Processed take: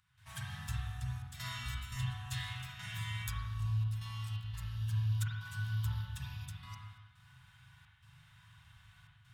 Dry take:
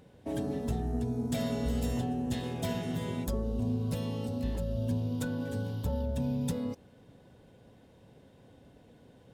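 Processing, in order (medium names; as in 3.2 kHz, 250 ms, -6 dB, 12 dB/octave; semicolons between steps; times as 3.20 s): elliptic band-stop 120–1200 Hz, stop band 80 dB; bass shelf 130 Hz -10 dB; trance gate ".xxxxxx.xx.xxxx" 86 bpm -12 dB; gain riding within 3 dB 2 s; spring tank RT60 1.2 s, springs 39/46 ms, chirp 75 ms, DRR -4 dB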